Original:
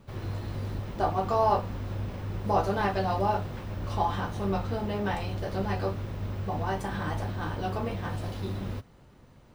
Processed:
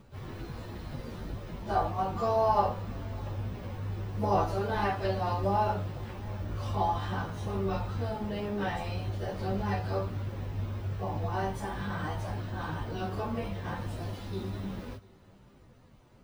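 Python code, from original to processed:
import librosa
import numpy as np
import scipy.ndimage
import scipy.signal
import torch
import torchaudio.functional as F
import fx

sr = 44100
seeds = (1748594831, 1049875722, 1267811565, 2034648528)

p1 = fx.stretch_vocoder_free(x, sr, factor=1.7)
y = p1 + fx.echo_single(p1, sr, ms=689, db=-24.0, dry=0)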